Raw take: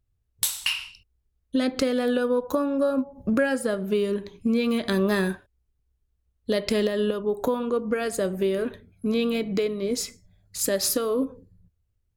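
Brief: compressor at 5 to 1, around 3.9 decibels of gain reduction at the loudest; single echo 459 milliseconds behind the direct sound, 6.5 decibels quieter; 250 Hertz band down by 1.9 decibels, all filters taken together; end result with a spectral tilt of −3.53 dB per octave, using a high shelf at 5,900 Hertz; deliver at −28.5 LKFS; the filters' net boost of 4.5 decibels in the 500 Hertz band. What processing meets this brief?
parametric band 250 Hz −3.5 dB
parametric band 500 Hz +6 dB
high-shelf EQ 5,900 Hz +7.5 dB
downward compressor 5 to 1, threshold −20 dBFS
single-tap delay 459 ms −6.5 dB
level −3.5 dB

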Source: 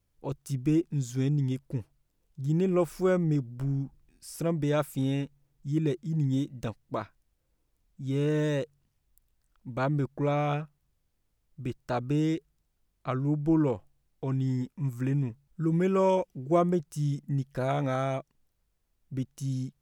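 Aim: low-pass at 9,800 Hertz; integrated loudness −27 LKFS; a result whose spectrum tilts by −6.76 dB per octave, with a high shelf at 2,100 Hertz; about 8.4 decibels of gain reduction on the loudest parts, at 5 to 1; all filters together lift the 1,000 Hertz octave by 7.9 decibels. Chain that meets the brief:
low-pass filter 9,800 Hz
parametric band 1,000 Hz +8.5 dB
high-shelf EQ 2,100 Hz +7.5 dB
downward compressor 5 to 1, threshold −24 dBFS
level +4 dB

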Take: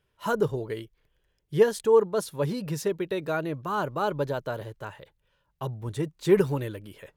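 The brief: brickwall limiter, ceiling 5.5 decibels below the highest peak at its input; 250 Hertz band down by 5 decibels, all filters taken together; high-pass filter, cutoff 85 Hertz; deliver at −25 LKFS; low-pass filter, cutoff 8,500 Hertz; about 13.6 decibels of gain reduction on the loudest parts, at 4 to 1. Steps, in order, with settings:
high-pass filter 85 Hz
low-pass filter 8,500 Hz
parametric band 250 Hz −8.5 dB
downward compressor 4 to 1, threshold −33 dBFS
level +15 dB
brickwall limiter −13.5 dBFS

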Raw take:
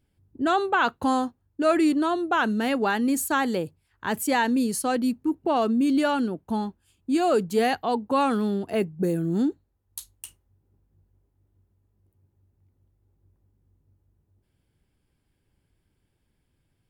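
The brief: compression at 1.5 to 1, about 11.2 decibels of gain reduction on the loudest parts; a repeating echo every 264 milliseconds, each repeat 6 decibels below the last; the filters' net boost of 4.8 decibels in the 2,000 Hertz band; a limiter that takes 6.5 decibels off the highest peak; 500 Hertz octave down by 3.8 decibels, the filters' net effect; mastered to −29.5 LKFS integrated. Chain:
parametric band 500 Hz −5.5 dB
parametric band 2,000 Hz +7 dB
downward compressor 1.5 to 1, threshold −49 dBFS
brickwall limiter −27 dBFS
repeating echo 264 ms, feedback 50%, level −6 dB
level +5.5 dB

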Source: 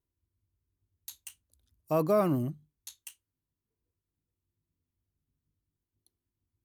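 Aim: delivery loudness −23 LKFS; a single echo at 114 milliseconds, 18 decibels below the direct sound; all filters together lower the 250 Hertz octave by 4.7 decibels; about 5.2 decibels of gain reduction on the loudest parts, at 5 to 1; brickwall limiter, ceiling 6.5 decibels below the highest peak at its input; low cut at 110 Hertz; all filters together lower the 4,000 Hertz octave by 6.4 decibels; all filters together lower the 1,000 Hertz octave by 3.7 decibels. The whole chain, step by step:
high-pass filter 110 Hz
parametric band 250 Hz −6 dB
parametric band 1,000 Hz −4 dB
parametric band 4,000 Hz −8.5 dB
downward compressor 5 to 1, threshold −29 dBFS
brickwall limiter −28 dBFS
single-tap delay 114 ms −18 dB
level +19 dB

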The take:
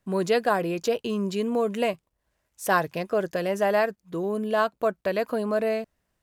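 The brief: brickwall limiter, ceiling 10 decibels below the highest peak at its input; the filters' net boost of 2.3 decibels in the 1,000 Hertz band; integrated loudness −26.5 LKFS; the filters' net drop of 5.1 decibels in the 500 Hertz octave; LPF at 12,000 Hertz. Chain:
low-pass filter 12,000 Hz
parametric band 500 Hz −9 dB
parametric band 1,000 Hz +6 dB
level +3.5 dB
brickwall limiter −13.5 dBFS

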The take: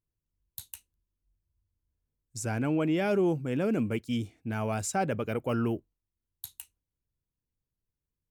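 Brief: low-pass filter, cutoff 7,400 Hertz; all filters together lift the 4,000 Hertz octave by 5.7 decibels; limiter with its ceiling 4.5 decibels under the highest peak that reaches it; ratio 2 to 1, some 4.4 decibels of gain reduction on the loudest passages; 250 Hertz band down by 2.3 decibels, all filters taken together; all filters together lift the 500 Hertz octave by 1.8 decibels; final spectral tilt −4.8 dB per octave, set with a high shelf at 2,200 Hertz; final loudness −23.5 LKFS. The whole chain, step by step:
low-pass filter 7,400 Hz
parametric band 250 Hz −4.5 dB
parametric band 500 Hz +3.5 dB
high-shelf EQ 2,200 Hz +4 dB
parametric band 4,000 Hz +4.5 dB
downward compressor 2 to 1, threshold −30 dBFS
level +11 dB
brickwall limiter −12.5 dBFS

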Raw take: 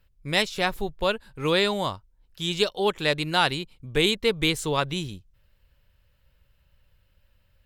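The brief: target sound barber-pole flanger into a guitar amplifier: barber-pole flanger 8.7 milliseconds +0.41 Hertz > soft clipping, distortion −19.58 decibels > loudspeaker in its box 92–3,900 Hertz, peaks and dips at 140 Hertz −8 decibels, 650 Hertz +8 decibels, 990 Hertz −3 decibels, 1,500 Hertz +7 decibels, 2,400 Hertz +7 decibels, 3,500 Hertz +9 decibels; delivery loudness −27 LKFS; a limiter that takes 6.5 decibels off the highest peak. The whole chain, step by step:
brickwall limiter −12.5 dBFS
barber-pole flanger 8.7 ms +0.41 Hz
soft clipping −18.5 dBFS
loudspeaker in its box 92–3,900 Hz, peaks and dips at 140 Hz −8 dB, 650 Hz +8 dB, 990 Hz −3 dB, 1,500 Hz +7 dB, 2,400 Hz +7 dB, 3,500 Hz +9 dB

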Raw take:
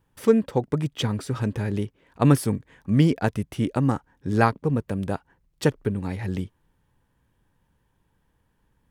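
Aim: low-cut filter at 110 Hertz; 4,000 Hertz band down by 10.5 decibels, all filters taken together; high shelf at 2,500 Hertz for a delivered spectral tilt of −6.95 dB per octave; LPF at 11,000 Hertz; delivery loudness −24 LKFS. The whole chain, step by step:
high-pass filter 110 Hz
low-pass filter 11,000 Hz
high-shelf EQ 2,500 Hz −7.5 dB
parametric band 4,000 Hz −8 dB
level +1.5 dB

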